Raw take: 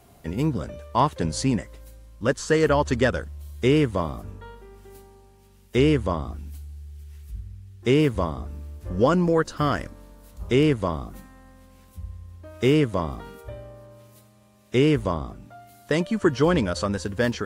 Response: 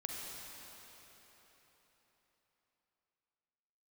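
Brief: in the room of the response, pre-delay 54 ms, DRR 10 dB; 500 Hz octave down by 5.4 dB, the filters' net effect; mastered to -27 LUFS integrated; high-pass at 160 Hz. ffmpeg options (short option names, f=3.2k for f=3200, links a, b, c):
-filter_complex "[0:a]highpass=160,equalizer=f=500:t=o:g=-6.5,asplit=2[a][b];[1:a]atrim=start_sample=2205,adelay=54[c];[b][c]afir=irnorm=-1:irlink=0,volume=-10.5dB[d];[a][d]amix=inputs=2:normalize=0"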